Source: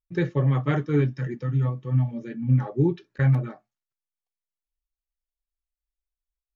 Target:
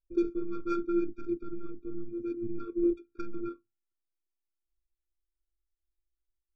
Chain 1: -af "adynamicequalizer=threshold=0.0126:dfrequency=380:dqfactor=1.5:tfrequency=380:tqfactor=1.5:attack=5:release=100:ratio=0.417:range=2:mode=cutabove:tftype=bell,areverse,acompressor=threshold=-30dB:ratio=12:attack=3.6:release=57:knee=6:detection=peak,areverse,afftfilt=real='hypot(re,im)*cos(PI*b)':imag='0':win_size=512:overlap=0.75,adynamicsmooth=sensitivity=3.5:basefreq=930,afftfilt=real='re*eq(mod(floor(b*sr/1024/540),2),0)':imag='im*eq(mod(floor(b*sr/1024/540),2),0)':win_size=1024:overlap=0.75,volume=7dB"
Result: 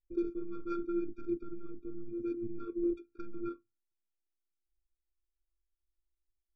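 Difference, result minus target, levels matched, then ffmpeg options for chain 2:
downward compressor: peak gain reduction +5.5 dB
-af "adynamicequalizer=threshold=0.0126:dfrequency=380:dqfactor=1.5:tfrequency=380:tqfactor=1.5:attack=5:release=100:ratio=0.417:range=2:mode=cutabove:tftype=bell,areverse,acompressor=threshold=-24dB:ratio=12:attack=3.6:release=57:knee=6:detection=peak,areverse,afftfilt=real='hypot(re,im)*cos(PI*b)':imag='0':win_size=512:overlap=0.75,adynamicsmooth=sensitivity=3.5:basefreq=930,afftfilt=real='re*eq(mod(floor(b*sr/1024/540),2),0)':imag='im*eq(mod(floor(b*sr/1024/540),2),0)':win_size=1024:overlap=0.75,volume=7dB"

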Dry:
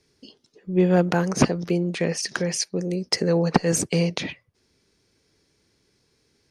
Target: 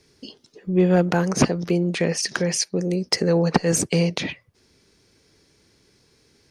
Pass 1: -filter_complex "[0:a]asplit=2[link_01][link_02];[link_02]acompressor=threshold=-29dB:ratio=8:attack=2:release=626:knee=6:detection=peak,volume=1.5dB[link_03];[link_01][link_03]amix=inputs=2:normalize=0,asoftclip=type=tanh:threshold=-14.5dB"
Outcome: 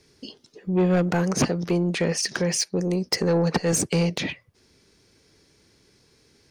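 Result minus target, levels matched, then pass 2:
soft clipping: distortion +15 dB
-filter_complex "[0:a]asplit=2[link_01][link_02];[link_02]acompressor=threshold=-29dB:ratio=8:attack=2:release=626:knee=6:detection=peak,volume=1.5dB[link_03];[link_01][link_03]amix=inputs=2:normalize=0,asoftclip=type=tanh:threshold=-3dB"

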